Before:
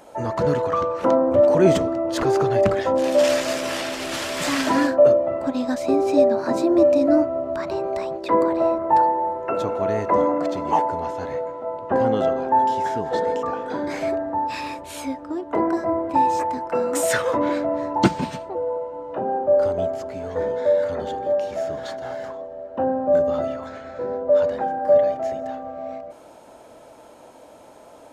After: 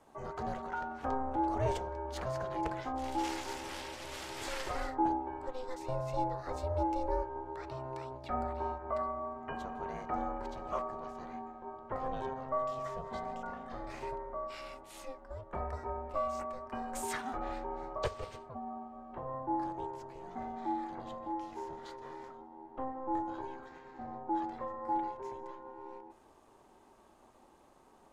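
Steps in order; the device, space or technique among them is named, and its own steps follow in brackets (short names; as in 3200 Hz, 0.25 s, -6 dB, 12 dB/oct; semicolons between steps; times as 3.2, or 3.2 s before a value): HPF 110 Hz; alien voice (ring modulator 260 Hz; flange 0.16 Hz, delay 1.4 ms, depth 2.9 ms, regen -81%); dynamic EQ 230 Hz, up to -4 dB, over -36 dBFS, Q 1; gain -8.5 dB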